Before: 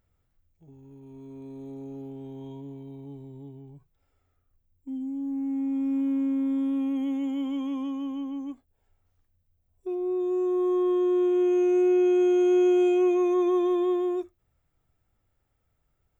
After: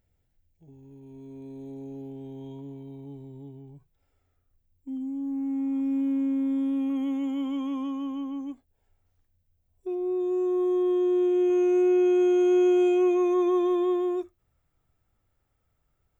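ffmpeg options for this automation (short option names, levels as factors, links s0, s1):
-af "asetnsamples=n=441:p=0,asendcmd='2.59 equalizer g -4;4.97 equalizer g 4;5.8 equalizer g -4.5;6.9 equalizer g 6;8.41 equalizer g -3.5;10.64 equalizer g -10;11.5 equalizer g 2',equalizer=f=1200:t=o:w=0.37:g=-12.5"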